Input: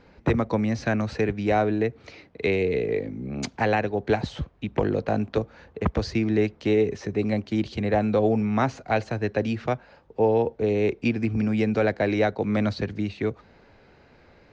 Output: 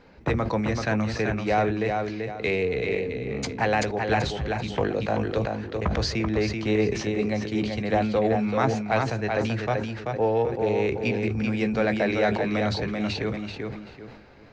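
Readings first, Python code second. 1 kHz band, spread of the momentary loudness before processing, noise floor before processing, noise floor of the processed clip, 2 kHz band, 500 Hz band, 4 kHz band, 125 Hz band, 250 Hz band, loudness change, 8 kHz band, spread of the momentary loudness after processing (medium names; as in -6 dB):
+1.5 dB, 7 LU, -56 dBFS, -45 dBFS, +2.5 dB, -0.5 dB, +5.0 dB, 0.0 dB, -1.5 dB, -0.5 dB, no reading, 6 LU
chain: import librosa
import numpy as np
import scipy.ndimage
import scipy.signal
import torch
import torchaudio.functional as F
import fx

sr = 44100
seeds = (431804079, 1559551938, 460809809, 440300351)

p1 = fx.doubler(x, sr, ms=15.0, db=-13)
p2 = fx.echo_feedback(p1, sr, ms=385, feedback_pct=24, wet_db=-5.0)
p3 = fx.dynamic_eq(p2, sr, hz=270.0, q=0.76, threshold_db=-33.0, ratio=4.0, max_db=-5)
p4 = 10.0 ** (-18.5 / 20.0) * np.tanh(p3 / 10.0 ** (-18.5 / 20.0))
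p5 = p3 + F.gain(torch.from_numpy(p4), -8.0).numpy()
p6 = fx.hum_notches(p5, sr, base_hz=50, count=8)
p7 = fx.sustainer(p6, sr, db_per_s=57.0)
y = F.gain(torch.from_numpy(p7), -2.0).numpy()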